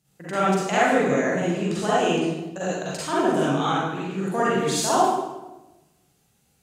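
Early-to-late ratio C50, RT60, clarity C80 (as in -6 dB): -5.5 dB, 1.1 s, 0.5 dB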